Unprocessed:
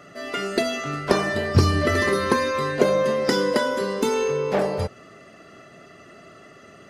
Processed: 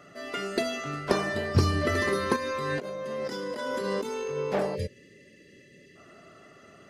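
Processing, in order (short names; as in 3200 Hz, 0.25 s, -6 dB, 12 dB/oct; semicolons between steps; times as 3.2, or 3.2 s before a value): 2.36–4.38 negative-ratio compressor -27 dBFS, ratio -1; 4.76–5.96 spectral gain 600–1600 Hz -27 dB; gain -5.5 dB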